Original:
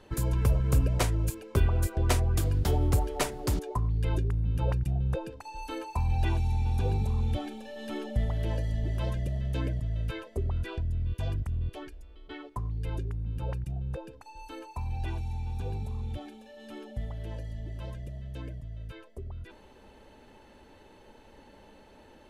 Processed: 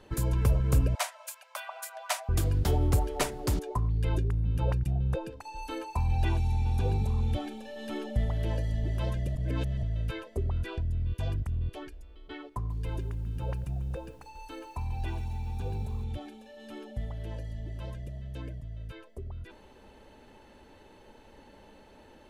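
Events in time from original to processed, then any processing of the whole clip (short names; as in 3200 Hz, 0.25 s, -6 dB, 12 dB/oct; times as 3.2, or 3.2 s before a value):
0.95–2.29 steep high-pass 590 Hz 96 dB/oct
9.35–9.83 reverse
12.5–16.04 lo-fi delay 0.141 s, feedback 55%, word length 9-bit, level -14.5 dB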